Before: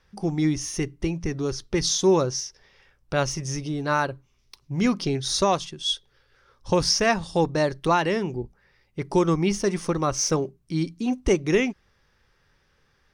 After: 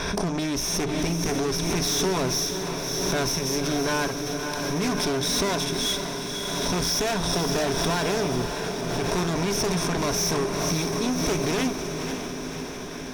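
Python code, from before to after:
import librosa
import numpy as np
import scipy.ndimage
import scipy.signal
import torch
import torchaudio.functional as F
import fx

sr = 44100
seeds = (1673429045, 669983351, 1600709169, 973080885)

y = fx.bin_compress(x, sr, power=0.6)
y = fx.ripple_eq(y, sr, per_octave=1.6, db=11)
y = fx.tube_stage(y, sr, drive_db=23.0, bias=0.6)
y = fx.echo_diffused(y, sr, ms=552, feedback_pct=70, wet_db=-6.5)
y = fx.pre_swell(y, sr, db_per_s=22.0)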